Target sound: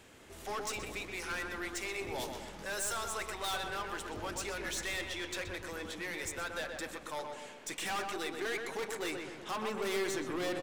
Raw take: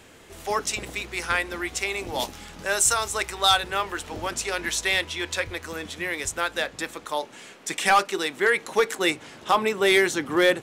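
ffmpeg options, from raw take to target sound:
-filter_complex "[0:a]aeval=exprs='(tanh(22.4*val(0)+0.2)-tanh(0.2))/22.4':c=same,asplit=2[a][b];[b]adelay=125,lowpass=f=2.2k:p=1,volume=-4dB,asplit=2[c][d];[d]adelay=125,lowpass=f=2.2k:p=1,volume=0.54,asplit=2[e][f];[f]adelay=125,lowpass=f=2.2k:p=1,volume=0.54,asplit=2[g][h];[h]adelay=125,lowpass=f=2.2k:p=1,volume=0.54,asplit=2[i][j];[j]adelay=125,lowpass=f=2.2k:p=1,volume=0.54,asplit=2[k][l];[l]adelay=125,lowpass=f=2.2k:p=1,volume=0.54,asplit=2[m][n];[n]adelay=125,lowpass=f=2.2k:p=1,volume=0.54[o];[a][c][e][g][i][k][m][o]amix=inputs=8:normalize=0,volume=-7dB"

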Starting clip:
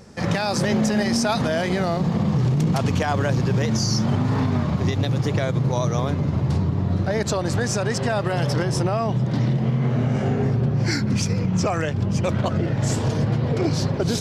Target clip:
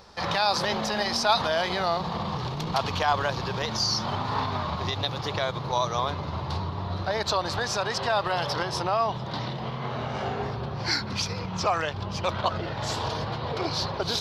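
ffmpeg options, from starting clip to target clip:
-af "equalizer=f=125:t=o:w=1:g=-11,equalizer=f=250:t=o:w=1:g=-11,equalizer=f=500:t=o:w=1:g=-3,equalizer=f=1k:t=o:w=1:g=8,equalizer=f=2k:t=o:w=1:g=-4,equalizer=f=4k:t=o:w=1:g=11,equalizer=f=8k:t=o:w=1:g=-12,volume=-1.5dB"

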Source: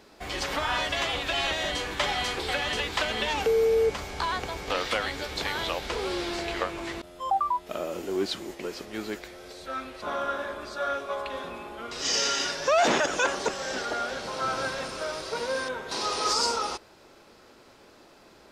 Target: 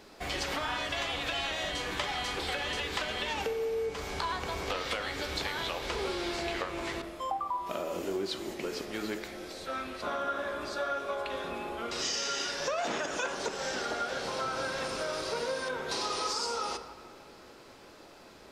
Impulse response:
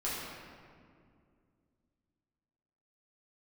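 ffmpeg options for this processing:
-filter_complex "[0:a]bandreject=f=54.53:t=h:w=4,bandreject=f=109.06:t=h:w=4,bandreject=f=163.59:t=h:w=4,bandreject=f=218.12:t=h:w=4,bandreject=f=272.65:t=h:w=4,bandreject=f=327.18:t=h:w=4,bandreject=f=381.71:t=h:w=4,bandreject=f=436.24:t=h:w=4,bandreject=f=490.77:t=h:w=4,bandreject=f=545.3:t=h:w=4,bandreject=f=599.83:t=h:w=4,bandreject=f=654.36:t=h:w=4,bandreject=f=708.89:t=h:w=4,bandreject=f=763.42:t=h:w=4,bandreject=f=817.95:t=h:w=4,bandreject=f=872.48:t=h:w=4,bandreject=f=927.01:t=h:w=4,bandreject=f=981.54:t=h:w=4,bandreject=f=1.03607k:t=h:w=4,bandreject=f=1.0906k:t=h:w=4,bandreject=f=1.14513k:t=h:w=4,bandreject=f=1.19966k:t=h:w=4,bandreject=f=1.25419k:t=h:w=4,bandreject=f=1.30872k:t=h:w=4,bandreject=f=1.36325k:t=h:w=4,bandreject=f=1.41778k:t=h:w=4,bandreject=f=1.47231k:t=h:w=4,bandreject=f=1.52684k:t=h:w=4,bandreject=f=1.58137k:t=h:w=4,bandreject=f=1.6359k:t=h:w=4,bandreject=f=1.69043k:t=h:w=4,bandreject=f=1.74496k:t=h:w=4,bandreject=f=1.79949k:t=h:w=4,bandreject=f=1.85402k:t=h:w=4,bandreject=f=1.90855k:t=h:w=4,acompressor=threshold=-32dB:ratio=6,asplit=2[a][b];[1:a]atrim=start_sample=2205[c];[b][c]afir=irnorm=-1:irlink=0,volume=-13dB[d];[a][d]amix=inputs=2:normalize=0"

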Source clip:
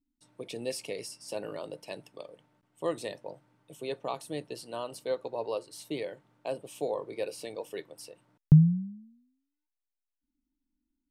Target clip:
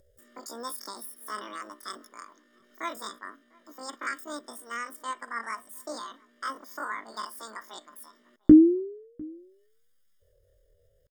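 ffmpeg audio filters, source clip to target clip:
-filter_complex "[0:a]aecho=1:1:1.2:0.79,acompressor=mode=upward:threshold=-50dB:ratio=2.5,asetrate=88200,aresample=44100,atempo=0.5,asplit=2[a][b];[b]adelay=699.7,volume=-26dB,highshelf=f=4k:g=-15.7[c];[a][c]amix=inputs=2:normalize=0"

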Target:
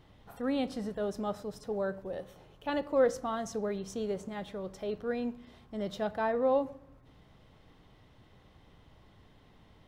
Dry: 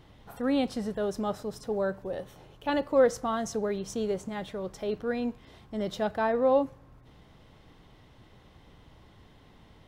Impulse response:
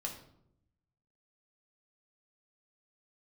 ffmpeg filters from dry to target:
-filter_complex "[0:a]asplit=2[a][b];[1:a]atrim=start_sample=2205,lowpass=5.6k[c];[b][c]afir=irnorm=-1:irlink=0,volume=-11.5dB[d];[a][d]amix=inputs=2:normalize=0,volume=-5.5dB"

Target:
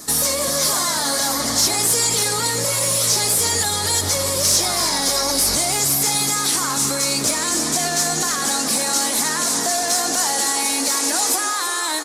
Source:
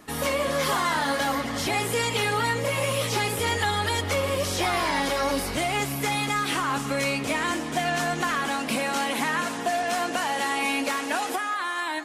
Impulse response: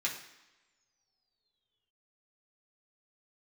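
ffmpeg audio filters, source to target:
-filter_complex "[0:a]alimiter=limit=-23dB:level=0:latency=1:release=83,aexciter=amount=13.7:drive=6.3:freq=4.3k,acontrast=80,aemphasis=mode=reproduction:type=50kf,asplit=9[a][b][c][d][e][f][g][h][i];[b]adelay=322,afreqshift=53,volume=-11dB[j];[c]adelay=644,afreqshift=106,volume=-14.9dB[k];[d]adelay=966,afreqshift=159,volume=-18.8dB[l];[e]adelay=1288,afreqshift=212,volume=-22.6dB[m];[f]adelay=1610,afreqshift=265,volume=-26.5dB[n];[g]adelay=1932,afreqshift=318,volume=-30.4dB[o];[h]adelay=2254,afreqshift=371,volume=-34.3dB[p];[i]adelay=2576,afreqshift=424,volume=-38.1dB[q];[a][j][k][l][m][n][o][p][q]amix=inputs=9:normalize=0"

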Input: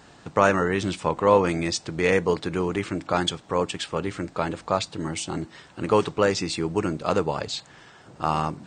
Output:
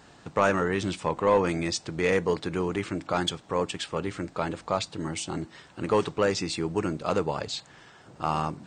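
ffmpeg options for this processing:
-af "asoftclip=type=tanh:threshold=-8.5dB,volume=-2.5dB"

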